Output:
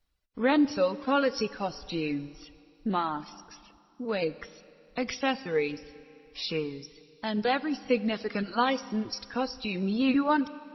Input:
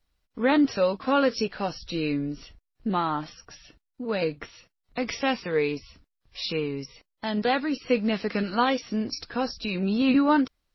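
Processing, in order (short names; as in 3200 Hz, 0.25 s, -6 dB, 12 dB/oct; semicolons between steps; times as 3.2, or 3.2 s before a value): reverb removal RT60 1.5 s; Schroeder reverb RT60 2.6 s, combs from 30 ms, DRR 16.5 dB; gain -2 dB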